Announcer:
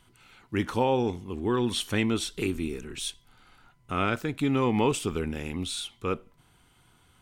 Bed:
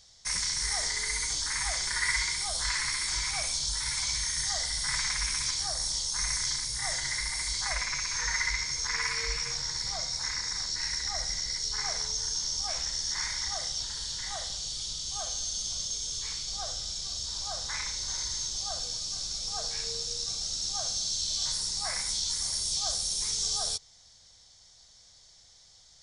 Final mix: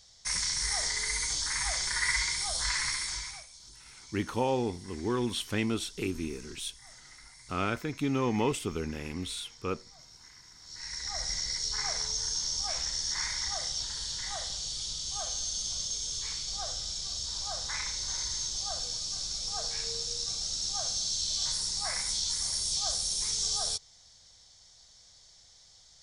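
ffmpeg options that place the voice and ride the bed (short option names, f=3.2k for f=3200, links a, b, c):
-filter_complex "[0:a]adelay=3600,volume=-4dB[a];[1:a]volume=20dB,afade=t=out:st=2.88:d=0.58:silence=0.0944061,afade=t=in:st=10.61:d=0.72:silence=0.0944061[b];[a][b]amix=inputs=2:normalize=0"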